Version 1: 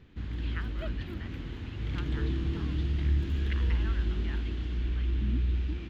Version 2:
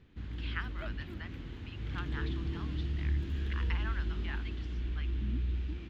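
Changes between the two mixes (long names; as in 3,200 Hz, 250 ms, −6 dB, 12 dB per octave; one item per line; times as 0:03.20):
speech +3.5 dB
background −5.0 dB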